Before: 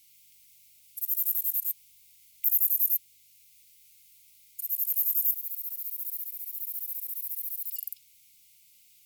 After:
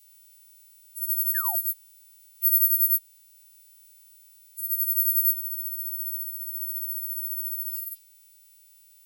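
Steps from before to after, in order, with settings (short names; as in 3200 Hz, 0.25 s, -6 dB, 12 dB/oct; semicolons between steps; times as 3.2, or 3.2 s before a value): frequency quantiser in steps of 2 st; painted sound fall, 1.34–1.56, 640–1900 Hz -25 dBFS; gain -9 dB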